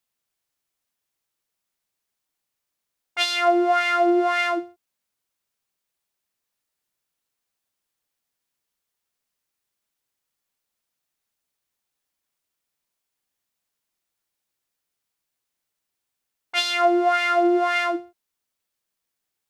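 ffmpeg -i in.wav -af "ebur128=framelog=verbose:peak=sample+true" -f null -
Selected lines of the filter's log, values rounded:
Integrated loudness:
  I:         -20.6 LUFS
  Threshold: -31.1 LUFS
Loudness range:
  LRA:         8.8 LU
  Threshold: -44.5 LUFS
  LRA low:   -31.8 LUFS
  LRA high:  -23.0 LUFS
Sample peak:
  Peak:       -8.2 dBFS
True peak:
  Peak:       -8.1 dBFS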